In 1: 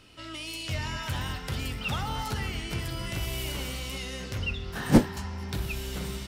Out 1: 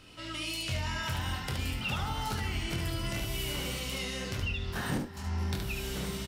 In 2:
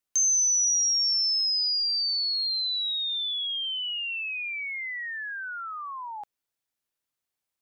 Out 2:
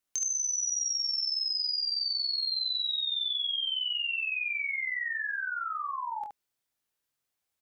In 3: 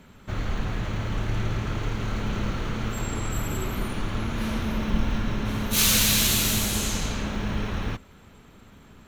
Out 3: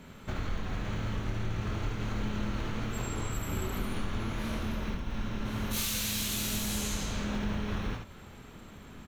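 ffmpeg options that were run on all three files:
-filter_complex "[0:a]acompressor=threshold=-31dB:ratio=16,asplit=2[a][b];[b]aecho=0:1:24|72:0.501|0.596[c];[a][c]amix=inputs=2:normalize=0"

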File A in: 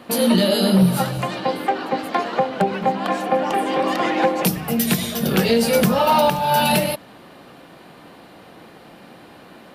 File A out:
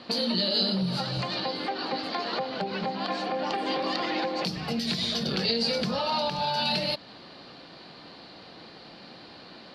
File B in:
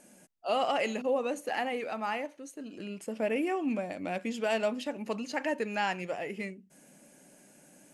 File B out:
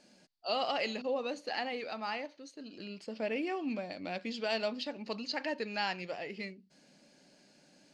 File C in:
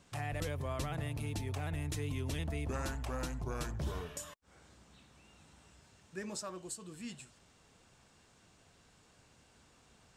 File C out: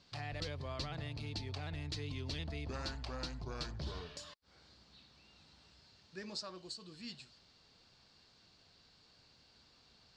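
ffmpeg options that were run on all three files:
-af "alimiter=limit=-16dB:level=0:latency=1:release=158,lowpass=f=4.5k:t=q:w=6.3,volume=-5dB"

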